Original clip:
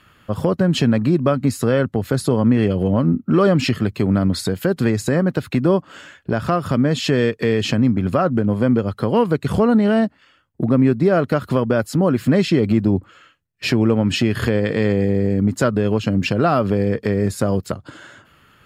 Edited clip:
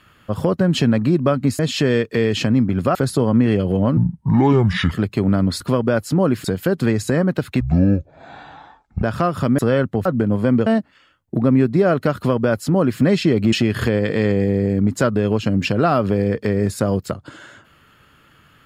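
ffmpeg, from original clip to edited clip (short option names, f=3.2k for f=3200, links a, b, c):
-filter_complex "[0:a]asplit=13[a][b][c][d][e][f][g][h][i][j][k][l][m];[a]atrim=end=1.592[n];[b]atrim=start=6.868:end=8.232[o];[c]atrim=start=2.058:end=3.084[p];[d]atrim=start=3.08:end=3.74,asetpts=PTS-STARTPTS,asetrate=30870,aresample=44100[q];[e]atrim=start=3.736:end=4.432[r];[f]atrim=start=11.428:end=12.272[s];[g]atrim=start=4.428:end=5.594[t];[h]atrim=start=5.59:end=6.32,asetpts=PTS-STARTPTS,asetrate=22491,aresample=44100[u];[i]atrim=start=6.316:end=6.872[v];[j]atrim=start=1.588:end=2.062[w];[k]atrim=start=8.228:end=8.842[x];[l]atrim=start=9.928:end=12.792[y];[m]atrim=start=14.128[z];[n][o]acrossfade=d=0.004:c1=hsin:c2=hsin[aa];[aa][p]acrossfade=d=0.004:c1=hsin:c2=hsin[ab];[ab][q]acrossfade=d=0.004:c1=hsin:c2=hsin[ac];[ac][r]acrossfade=d=0.004:c1=hsin:c2=hsin[ad];[ad][s]acrossfade=d=0.004:c1=hsin:c2=hsin[ae];[ae][t]acrossfade=d=0.004:c1=hsin:c2=hsin[af];[af][u]acrossfade=d=0.004:c1=hsin:c2=hsin[ag];[ag][v]acrossfade=d=0.004:c1=hsin:c2=hsin[ah];[ah][w]acrossfade=d=0.004:c1=hsin:c2=hsin[ai];[ai][x]acrossfade=d=0.004:c1=hsin:c2=hsin[aj];[aj][y]acrossfade=d=0.004:c1=hsin:c2=hsin[ak];[ak][z]acrossfade=d=0.004:c1=hsin:c2=hsin"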